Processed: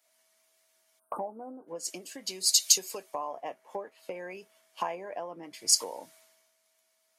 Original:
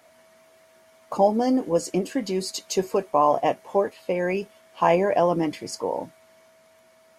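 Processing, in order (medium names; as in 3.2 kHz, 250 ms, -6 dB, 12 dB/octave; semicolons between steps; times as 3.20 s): spectral selection erased 0.99–1.68 s, 1.6–8.1 kHz; compression 16:1, threshold -33 dBFS, peak gain reduction 20.5 dB; high-pass 530 Hz 6 dB/octave; treble shelf 3.5 kHz +10.5 dB; three bands expanded up and down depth 100%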